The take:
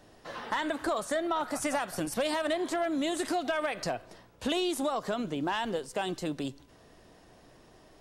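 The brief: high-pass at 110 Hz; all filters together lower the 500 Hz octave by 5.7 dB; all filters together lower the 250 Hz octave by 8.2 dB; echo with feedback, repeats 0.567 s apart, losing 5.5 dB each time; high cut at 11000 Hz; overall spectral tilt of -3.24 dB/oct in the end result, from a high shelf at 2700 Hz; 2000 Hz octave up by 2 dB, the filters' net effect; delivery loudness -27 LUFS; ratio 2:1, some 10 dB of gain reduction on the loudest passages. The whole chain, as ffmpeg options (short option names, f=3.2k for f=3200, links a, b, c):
-af "highpass=110,lowpass=11k,equalizer=f=250:t=o:g=-8.5,equalizer=f=500:t=o:g=-6,equalizer=f=2k:t=o:g=5.5,highshelf=f=2.7k:g=-6.5,acompressor=threshold=-47dB:ratio=2,aecho=1:1:567|1134|1701|2268|2835|3402|3969:0.531|0.281|0.149|0.079|0.0419|0.0222|0.0118,volume=16dB"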